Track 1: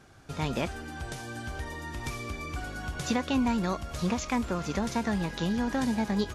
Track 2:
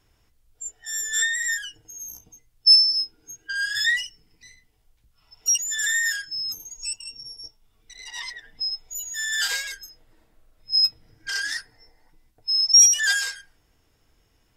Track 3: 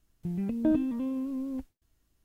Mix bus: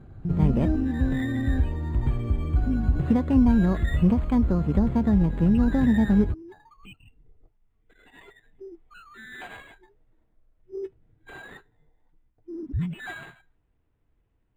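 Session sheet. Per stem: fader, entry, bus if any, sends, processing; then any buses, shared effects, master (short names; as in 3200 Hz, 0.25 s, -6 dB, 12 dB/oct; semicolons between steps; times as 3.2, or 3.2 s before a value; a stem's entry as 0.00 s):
-4.0 dB, 0.00 s, no send, tilt -2.5 dB/oct
-14.0 dB, 0.00 s, no send, dry
-2.5 dB, 0.00 s, no send, limiter -24 dBFS, peak gain reduction 7.5 dB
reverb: off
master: low shelf 420 Hz +9.5 dB; decimation joined by straight lines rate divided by 8×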